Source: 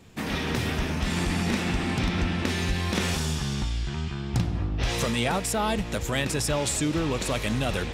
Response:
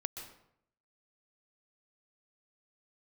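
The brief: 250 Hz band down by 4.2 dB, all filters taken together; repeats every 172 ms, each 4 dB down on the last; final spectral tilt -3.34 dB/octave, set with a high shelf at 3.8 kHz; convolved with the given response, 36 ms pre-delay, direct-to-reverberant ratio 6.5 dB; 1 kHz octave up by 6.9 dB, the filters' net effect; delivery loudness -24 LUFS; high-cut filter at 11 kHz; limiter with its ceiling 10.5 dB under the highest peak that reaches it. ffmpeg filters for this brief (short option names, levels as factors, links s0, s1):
-filter_complex "[0:a]lowpass=11000,equalizer=f=250:t=o:g=-6.5,equalizer=f=1000:t=o:g=8.5,highshelf=f=3800:g=9,alimiter=limit=0.133:level=0:latency=1,aecho=1:1:172|344|516|688|860|1032|1204|1376|1548:0.631|0.398|0.25|0.158|0.0994|0.0626|0.0394|0.0249|0.0157,asplit=2[s0][s1];[1:a]atrim=start_sample=2205,adelay=36[s2];[s1][s2]afir=irnorm=-1:irlink=0,volume=0.473[s3];[s0][s3]amix=inputs=2:normalize=0"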